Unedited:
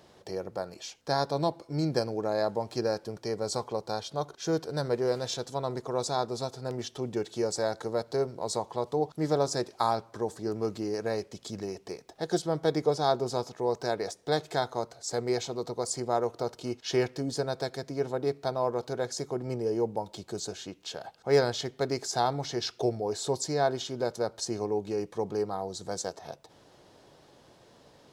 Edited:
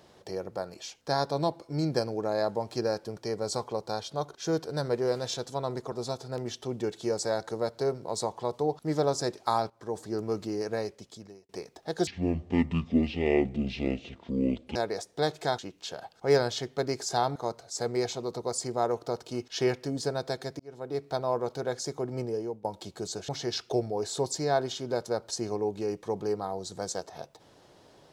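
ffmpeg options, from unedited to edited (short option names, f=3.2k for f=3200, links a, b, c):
-filter_complex "[0:a]asplit=11[a][b][c][d][e][f][g][h][i][j][k];[a]atrim=end=5.922[l];[b]atrim=start=6.248:end=10.03,asetpts=PTS-STARTPTS,afade=t=out:st=3.778:d=0.004:c=hsin:silence=0.177828[m];[c]atrim=start=10.03:end=11.82,asetpts=PTS-STARTPTS,afade=t=in:d=0.3:silence=0.177828,afade=t=out:st=1.02:d=0.77[n];[d]atrim=start=11.82:end=12.404,asetpts=PTS-STARTPTS,afade=t=in:d=0.004:c=hsin[o];[e]atrim=start=12.4:end=13.85,asetpts=PTS-STARTPTS,asetrate=23814,aresample=44100[p];[f]atrim=start=13.846:end=14.682[q];[g]atrim=start=20.608:end=22.382[r];[h]atrim=start=14.678:end=17.92,asetpts=PTS-STARTPTS,afade=t=out:st=3.238:d=0.004:c=hsin[s];[i]atrim=start=17.92:end=19.97,asetpts=PTS-STARTPTS,afade=t=in:d=0.53,afade=t=out:st=1.63:d=0.42:silence=0.149624[t];[j]atrim=start=19.97:end=20.612,asetpts=PTS-STARTPTS,afade=t=in:d=0.004:c=hsin:silence=0.149624[u];[k]atrim=start=22.378[v];[m][n][o]concat=n=3:v=0:a=1[w];[l][w]acrossfade=d=0.004:c1=hsin:c2=hsin[x];[x][p]acrossfade=d=0.004:c1=hsin:c2=hsin[y];[y][q]acrossfade=d=0.004:c1=hsin:c2=hsin[z];[z][r]acrossfade=d=0.004:c1=hsin:c2=hsin[aa];[s][t][u]concat=n=3:v=0:a=1[ab];[aa][ab]acrossfade=d=0.004:c1=hsin:c2=hsin[ac];[ac][v]acrossfade=d=0.004:c1=hsin:c2=hsin"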